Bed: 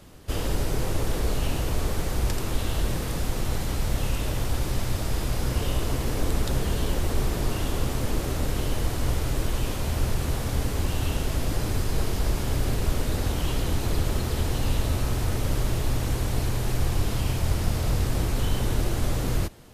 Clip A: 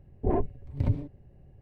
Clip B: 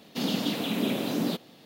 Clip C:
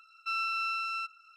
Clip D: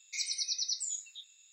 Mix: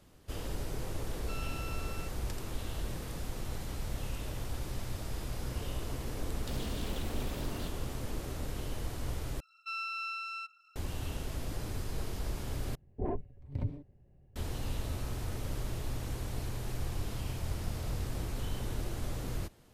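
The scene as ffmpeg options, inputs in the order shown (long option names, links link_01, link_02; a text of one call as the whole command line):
ffmpeg -i bed.wav -i cue0.wav -i cue1.wav -i cue2.wav -filter_complex "[3:a]asplit=2[link_01][link_02];[0:a]volume=-11.5dB[link_03];[2:a]asoftclip=type=hard:threshold=-32.5dB[link_04];[link_02]highpass=1100[link_05];[1:a]acontrast=58[link_06];[link_03]asplit=3[link_07][link_08][link_09];[link_07]atrim=end=9.404[link_10];[link_05]atrim=end=1.36,asetpts=PTS-STARTPTS,volume=-5dB[link_11];[link_08]atrim=start=10.756:end=12.754[link_12];[link_06]atrim=end=1.61,asetpts=PTS-STARTPTS,volume=-14.5dB[link_13];[link_09]atrim=start=14.356[link_14];[link_01]atrim=end=1.36,asetpts=PTS-STARTPTS,volume=-14.5dB,afade=type=in:duration=0.004:curve=hsin,afade=type=out:start_time=1.356:duration=0.004:curve=hsin,adelay=1020[link_15];[link_04]atrim=end=1.65,asetpts=PTS-STARTPTS,volume=-9.5dB,afade=type=in:duration=0.004:curve=hsin,afade=type=out:start_time=1.646:duration=0.004:curve=hsin,adelay=6320[link_16];[link_10][link_11]acrossfade=duration=0.004:curve1=hsin:curve2=hsin[link_17];[link_17][link_12]acrossfade=duration=0.004:curve1=hsin:curve2=hsin[link_18];[link_18][link_13]acrossfade=duration=0.004:curve1=hsin:curve2=hsin[link_19];[link_19][link_14]acrossfade=duration=0.004:curve1=hsin:curve2=hsin[link_20];[link_20][link_15][link_16]amix=inputs=3:normalize=0" out.wav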